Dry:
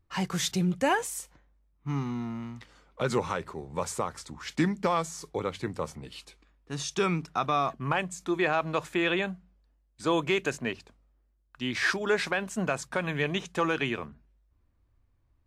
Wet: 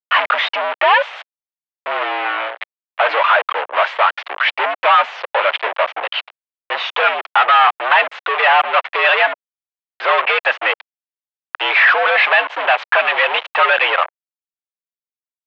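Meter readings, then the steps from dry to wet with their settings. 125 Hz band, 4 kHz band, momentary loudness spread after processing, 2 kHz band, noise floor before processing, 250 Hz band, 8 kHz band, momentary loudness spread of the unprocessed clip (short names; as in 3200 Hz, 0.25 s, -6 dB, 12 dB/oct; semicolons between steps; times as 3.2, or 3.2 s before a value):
under -40 dB, +15.5 dB, 11 LU, +18.0 dB, -70 dBFS, under -10 dB, under -15 dB, 12 LU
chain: reverb removal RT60 0.71 s; fuzz box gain 51 dB, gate -44 dBFS; mistuned SSB +86 Hz 540–3000 Hz; gain +5 dB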